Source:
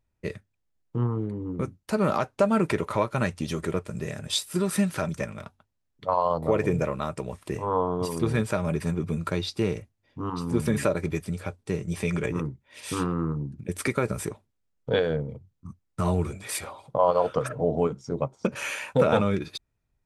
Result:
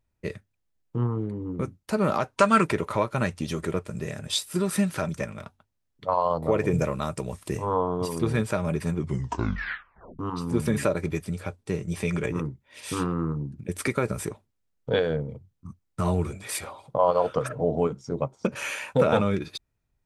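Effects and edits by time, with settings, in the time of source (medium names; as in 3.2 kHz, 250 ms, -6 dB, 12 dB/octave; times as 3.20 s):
2.38–2.64 s: time-frequency box 950–9500 Hz +10 dB
6.73–7.75 s: tone controls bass +3 dB, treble +7 dB
8.97 s: tape stop 1.22 s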